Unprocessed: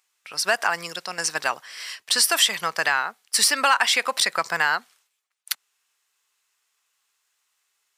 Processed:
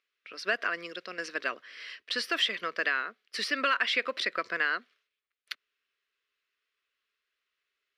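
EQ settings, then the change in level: air absorption 330 m; fixed phaser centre 350 Hz, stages 4; 0.0 dB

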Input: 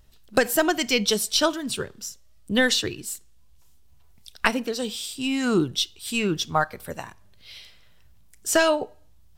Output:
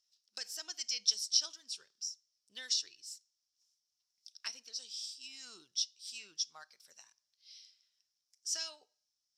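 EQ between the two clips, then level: band-pass 5400 Hz, Q 7.4; 0.0 dB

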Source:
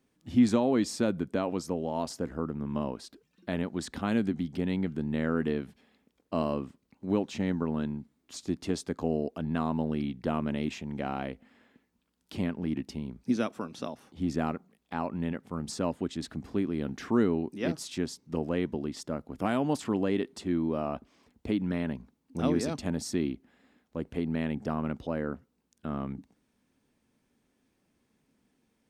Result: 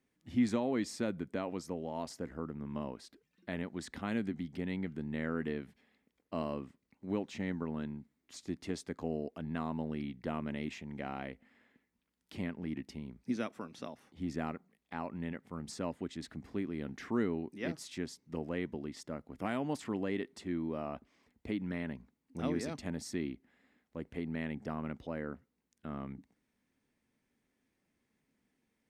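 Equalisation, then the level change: bell 2000 Hz +7 dB 0.47 oct; -7.5 dB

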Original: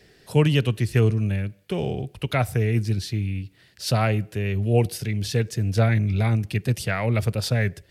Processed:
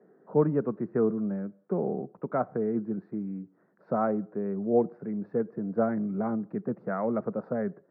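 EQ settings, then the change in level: elliptic band-pass 190–1300 Hz, stop band 40 dB; air absorption 400 m; 0.0 dB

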